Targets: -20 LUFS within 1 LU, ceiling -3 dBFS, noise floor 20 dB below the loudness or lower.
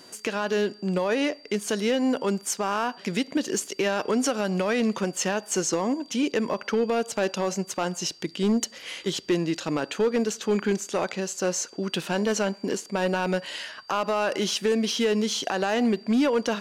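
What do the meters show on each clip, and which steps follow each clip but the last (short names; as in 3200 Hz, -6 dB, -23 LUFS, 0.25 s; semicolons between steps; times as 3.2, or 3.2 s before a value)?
clipped 1.0%; flat tops at -17.0 dBFS; steady tone 4700 Hz; tone level -50 dBFS; loudness -26.5 LUFS; peak -17.0 dBFS; loudness target -20.0 LUFS
-> clip repair -17 dBFS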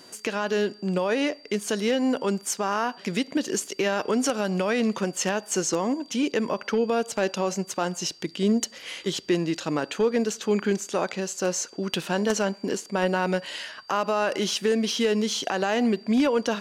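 clipped 0.0%; steady tone 4700 Hz; tone level -50 dBFS
-> notch 4700 Hz, Q 30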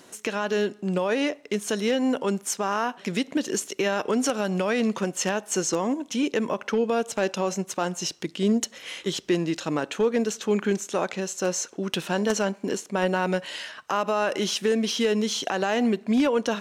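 steady tone none; loudness -26.0 LUFS; peak -8.0 dBFS; loudness target -20.0 LUFS
-> gain +6 dB; limiter -3 dBFS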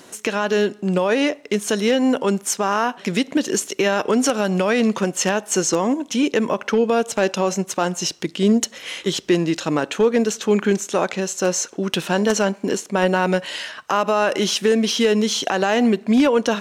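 loudness -20.0 LUFS; peak -3.0 dBFS; noise floor -46 dBFS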